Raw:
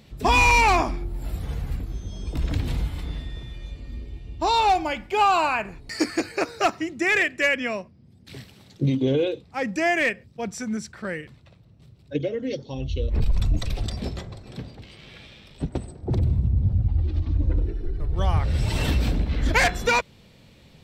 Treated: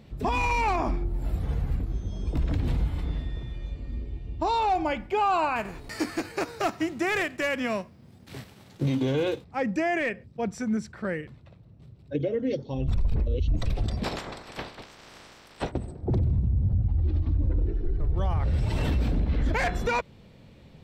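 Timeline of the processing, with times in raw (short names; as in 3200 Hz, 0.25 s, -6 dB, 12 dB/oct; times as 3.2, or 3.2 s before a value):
5.55–9.43 spectral whitening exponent 0.6
12.88–13.48 reverse
14.03–15.7 spectral limiter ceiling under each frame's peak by 30 dB
whole clip: high shelf 2200 Hz -10.5 dB; limiter -19.5 dBFS; gain +1.5 dB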